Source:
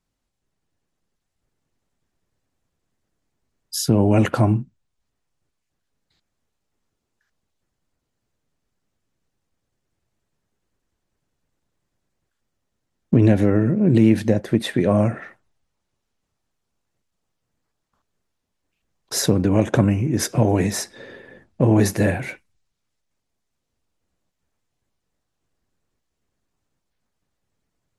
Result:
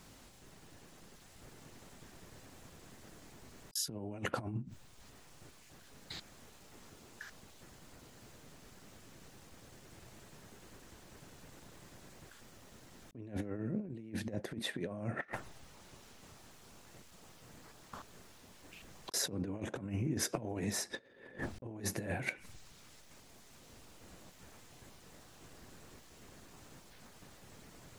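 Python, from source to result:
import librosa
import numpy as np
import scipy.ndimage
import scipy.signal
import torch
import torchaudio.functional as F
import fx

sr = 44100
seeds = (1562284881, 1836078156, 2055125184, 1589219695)

y = fx.low_shelf(x, sr, hz=70.0, db=-8.5)
y = fx.gate_flip(y, sr, shuts_db=-21.0, range_db=-34)
y = fx.over_compress(y, sr, threshold_db=-56.0, ratio=-0.5)
y = y * 10.0 ** (16.0 / 20.0)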